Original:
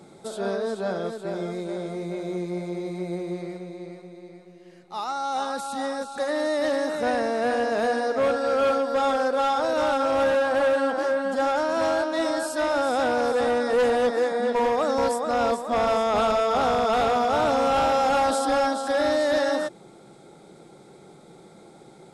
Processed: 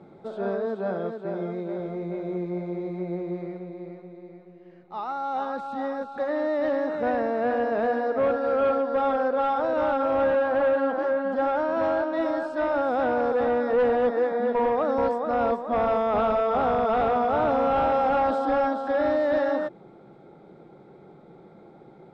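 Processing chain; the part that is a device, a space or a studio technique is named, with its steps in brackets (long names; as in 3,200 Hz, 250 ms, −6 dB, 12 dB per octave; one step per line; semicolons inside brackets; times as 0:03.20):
0:00.65–0:01.80: high-pass filter 58 Hz
phone in a pocket (low-pass filter 3,000 Hz 12 dB per octave; high-shelf EQ 2,500 Hz −11 dB)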